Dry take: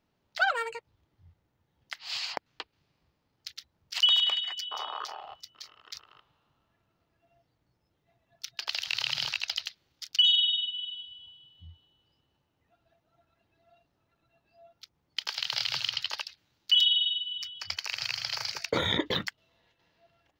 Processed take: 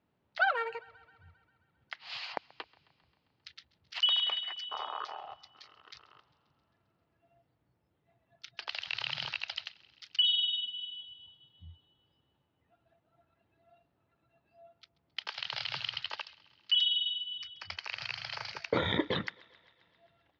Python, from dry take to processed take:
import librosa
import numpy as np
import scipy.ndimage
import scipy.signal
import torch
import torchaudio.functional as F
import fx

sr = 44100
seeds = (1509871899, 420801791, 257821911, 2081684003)

p1 = scipy.signal.sosfilt(scipy.signal.butter(2, 67.0, 'highpass', fs=sr, output='sos'), x)
p2 = fx.air_absorb(p1, sr, metres=260.0)
y = p2 + fx.echo_thinned(p2, sr, ms=133, feedback_pct=69, hz=410.0, wet_db=-23.0, dry=0)